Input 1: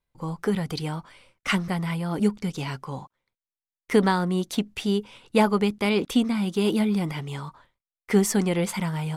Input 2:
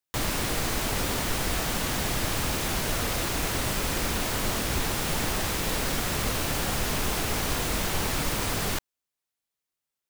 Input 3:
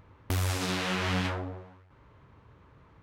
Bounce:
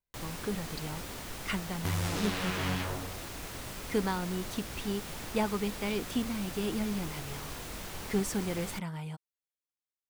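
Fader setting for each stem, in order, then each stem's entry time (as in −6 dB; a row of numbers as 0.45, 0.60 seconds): −10.5, −13.5, −4.0 decibels; 0.00, 0.00, 1.55 seconds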